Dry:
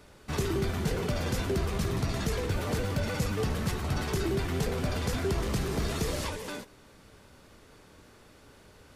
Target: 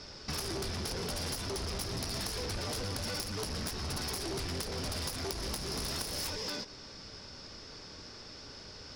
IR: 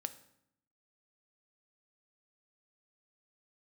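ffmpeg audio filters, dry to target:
-af "lowpass=f=5.2k:t=q:w=11,aeval=exprs='0.299*(cos(1*acos(clip(val(0)/0.299,-1,1)))-cos(1*PI/2))+0.106*(cos(7*acos(clip(val(0)/0.299,-1,1)))-cos(7*PI/2))':c=same,acompressor=threshold=-35dB:ratio=6"

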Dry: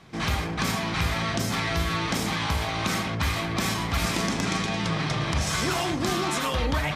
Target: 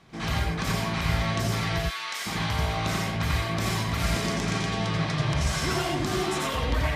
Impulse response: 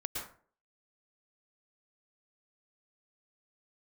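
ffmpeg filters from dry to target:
-filter_complex "[0:a]asplit=3[a][b][c];[a]afade=t=out:st=1.79:d=0.02[d];[b]highpass=1.2k,afade=t=in:st=1.79:d=0.02,afade=t=out:st=2.25:d=0.02[e];[c]afade=t=in:st=2.25:d=0.02[f];[d][e][f]amix=inputs=3:normalize=0[g];[1:a]atrim=start_sample=2205,atrim=end_sample=6174,asetrate=57330,aresample=44100[h];[g][h]afir=irnorm=-1:irlink=0"

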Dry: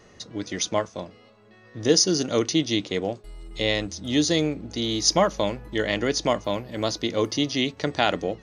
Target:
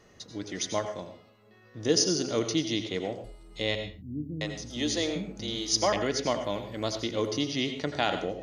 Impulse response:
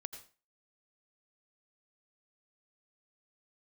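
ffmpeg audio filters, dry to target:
-filter_complex "[0:a]asettb=1/sr,asplit=3[a][b][c];[a]atrim=end=3.754[d];[b]atrim=start=3.75:end=5.93,asetpts=PTS-STARTPTS,afade=t=in:d=0.004:c=qsin,afade=t=out:st=2.176:d=0.004:c=qsin,acrossover=split=260[e][f];[f]adelay=660[g];[e][g]amix=inputs=2:normalize=0,atrim=end_sample=96138[h];[c]atrim=start=5.926[i];[d][h]acrossfade=d=0.004:c1=hsin:c2=qsin[j];[j][i]acrossfade=d=0.004:c1=qsin:c2=hsin[k];[1:a]atrim=start_sample=2205,afade=t=out:st=0.32:d=0.01,atrim=end_sample=14553[l];[k][l]afir=irnorm=-1:irlink=0,volume=-2dB" -ar 48000 -c:a mp2 -b:a 128k

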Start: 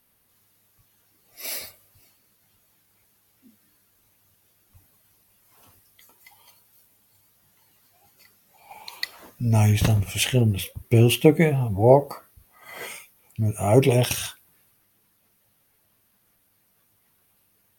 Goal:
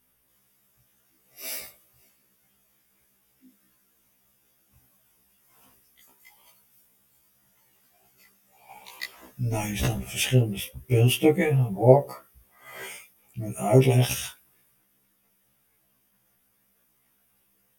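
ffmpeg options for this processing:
-af "equalizer=f=900:t=o:w=0.21:g=-3,bandreject=f=4.2k:w=6,afftfilt=real='re*1.73*eq(mod(b,3),0)':imag='im*1.73*eq(mod(b,3),0)':win_size=2048:overlap=0.75"

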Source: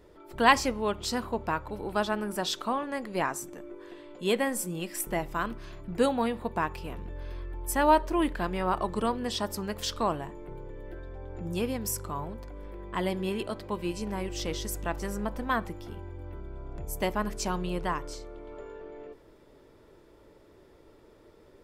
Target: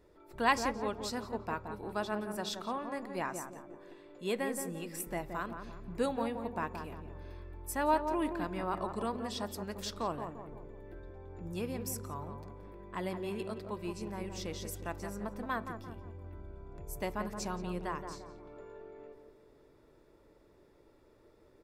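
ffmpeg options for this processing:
-filter_complex "[0:a]bandreject=f=3.1k:w=11,asplit=2[a][b];[b]adelay=173,lowpass=f=1.2k:p=1,volume=-6dB,asplit=2[c][d];[d]adelay=173,lowpass=f=1.2k:p=1,volume=0.48,asplit=2[e][f];[f]adelay=173,lowpass=f=1.2k:p=1,volume=0.48,asplit=2[g][h];[h]adelay=173,lowpass=f=1.2k:p=1,volume=0.48,asplit=2[i][j];[j]adelay=173,lowpass=f=1.2k:p=1,volume=0.48,asplit=2[k][l];[l]adelay=173,lowpass=f=1.2k:p=1,volume=0.48[m];[a][c][e][g][i][k][m]amix=inputs=7:normalize=0,volume=-7.5dB"

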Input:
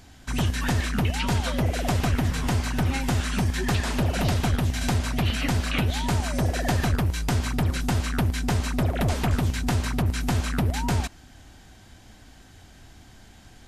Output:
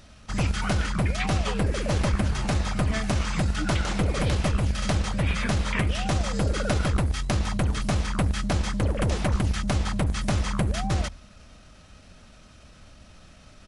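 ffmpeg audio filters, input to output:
-af "bandreject=f=47.5:t=h:w=4,bandreject=f=95:t=h:w=4,asetrate=36028,aresample=44100,atempo=1.22405"

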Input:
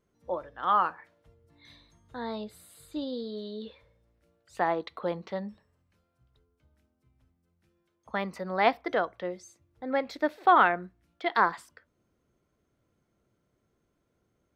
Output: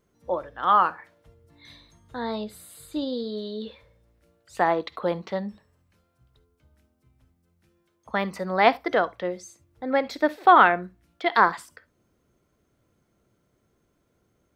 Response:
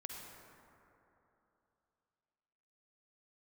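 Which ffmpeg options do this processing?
-filter_complex "[0:a]asplit=2[a][b];[1:a]atrim=start_sample=2205,atrim=end_sample=3528,highshelf=f=4.7k:g=11[c];[b][c]afir=irnorm=-1:irlink=0,volume=-7.5dB[d];[a][d]amix=inputs=2:normalize=0,volume=3.5dB"

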